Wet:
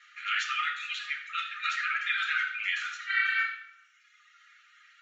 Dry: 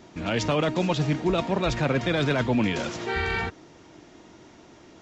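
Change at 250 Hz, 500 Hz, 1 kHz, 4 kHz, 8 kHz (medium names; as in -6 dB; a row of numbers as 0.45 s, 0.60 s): under -40 dB, under -40 dB, -4.0 dB, -1.5 dB, no reading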